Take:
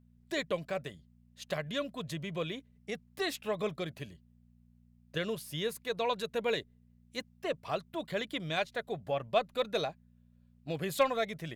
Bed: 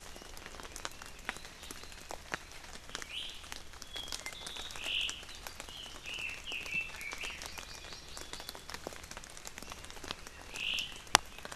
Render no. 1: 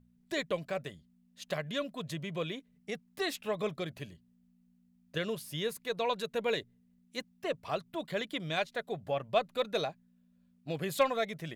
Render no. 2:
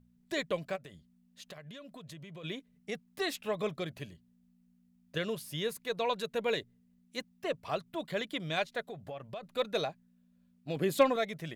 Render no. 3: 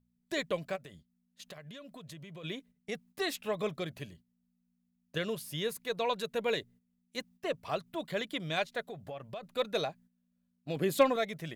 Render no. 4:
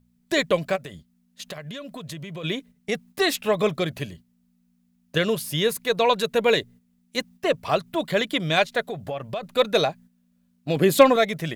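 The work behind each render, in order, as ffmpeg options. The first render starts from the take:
-af "bandreject=f=60:t=h:w=4,bandreject=f=120:t=h:w=4"
-filter_complex "[0:a]asplit=3[a][b][c];[a]afade=t=out:st=0.75:d=0.02[d];[b]acompressor=threshold=-45dB:ratio=6:attack=3.2:release=140:knee=1:detection=peak,afade=t=in:st=0.75:d=0.02,afade=t=out:st=2.43:d=0.02[e];[c]afade=t=in:st=2.43:d=0.02[f];[d][e][f]amix=inputs=3:normalize=0,asettb=1/sr,asplit=3[g][h][i];[g]atrim=end=8.814[j];[h]atrim=start=8.81:end=9.43,asetpts=PTS-STARTPTS,afade=t=in:d=0.004:c=qsin,afade=t=out:st=0.616:d=0.004:c=qsin,acompressor=threshold=-39dB:ratio=5:attack=3.2:release=140:knee=1:detection=peak[k];[i]atrim=start=9.426[l];[j][k]acrossfade=d=0.004:c1=hsin:c2=qsin[m];[m][l]acrossfade=d=0.004:c1=qsin:c2=hsin,asettb=1/sr,asplit=3[n][o][p];[n]atrim=end=10.764[q];[o]atrim=start=10.76:end=11.16,asetpts=PTS-STARTPTS,afade=t=in:d=0.004:c=qsin,afade=t=out:st=0.396:d=0.004:c=qsin,equalizer=f=310:t=o:w=1.1:g=10[r];[p]atrim=start=11.156[s];[q][r]acrossfade=d=0.004:c1=hsin:c2=qsin[t];[t][s]acrossfade=d=0.004:c1=qsin:c2=hsin"
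-af "agate=range=-10dB:threshold=-56dB:ratio=16:detection=peak,highshelf=f=9.2k:g=3"
-af "volume=12dB,alimiter=limit=-3dB:level=0:latency=1"

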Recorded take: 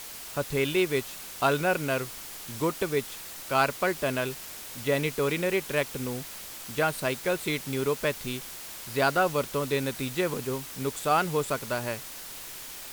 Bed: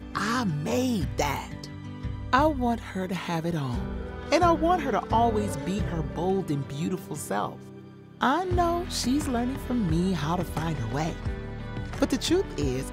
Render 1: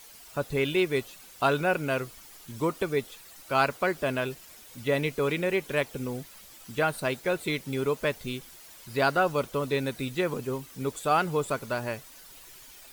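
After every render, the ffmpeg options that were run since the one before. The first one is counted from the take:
-af "afftdn=nr=11:nf=-42"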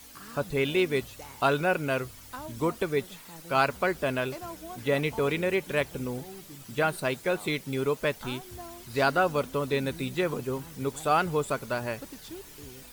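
-filter_complex "[1:a]volume=-19.5dB[a];[0:a][a]amix=inputs=2:normalize=0"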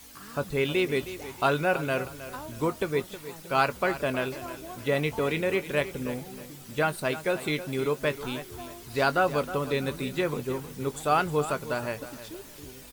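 -filter_complex "[0:a]asplit=2[a][b];[b]adelay=20,volume=-14dB[c];[a][c]amix=inputs=2:normalize=0,aecho=1:1:315|630|945:0.211|0.0655|0.0203"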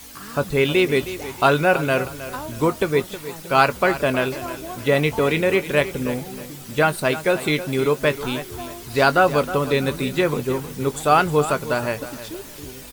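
-af "volume=8dB"

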